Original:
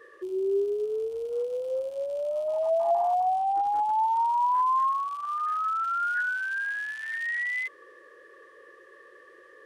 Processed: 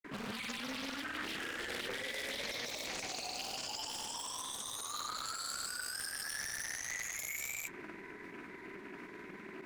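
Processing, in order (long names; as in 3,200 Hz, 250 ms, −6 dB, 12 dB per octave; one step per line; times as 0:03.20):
low-shelf EQ 190 Hz +9.5 dB
downward compressor 2.5 to 1, threshold −29 dBFS, peak gain reduction 6.5 dB
wave folding −38 dBFS
frequency shifter −160 Hz
granular cloud, pitch spread up and down by 0 semitones
formants moved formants +4 semitones
delay with a low-pass on its return 538 ms, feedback 81%, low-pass 550 Hz, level −10.5 dB
highs frequency-modulated by the lows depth 0.75 ms
level +3.5 dB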